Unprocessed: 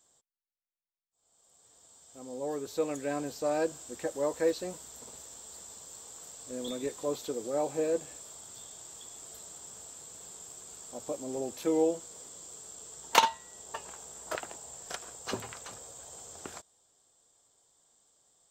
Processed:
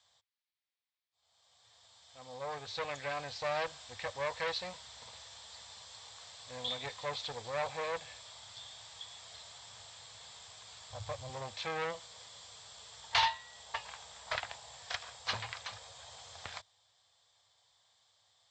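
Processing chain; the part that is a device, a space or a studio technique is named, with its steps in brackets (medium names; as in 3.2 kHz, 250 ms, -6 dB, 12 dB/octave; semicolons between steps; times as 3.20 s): 10.90–11.30 s: resonant low shelf 150 Hz +12 dB, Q 3; scooped metal amplifier (valve stage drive 30 dB, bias 0.6; cabinet simulation 99–4100 Hz, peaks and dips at 100 Hz +7 dB, 160 Hz -6 dB, 380 Hz -8 dB, 1.4 kHz -6 dB, 2.8 kHz -5 dB; amplifier tone stack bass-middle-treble 10-0-10); trim +15.5 dB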